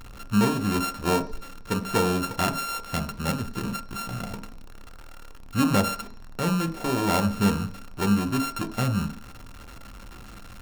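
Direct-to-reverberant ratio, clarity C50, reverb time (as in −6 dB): 8.0 dB, 15.5 dB, 0.50 s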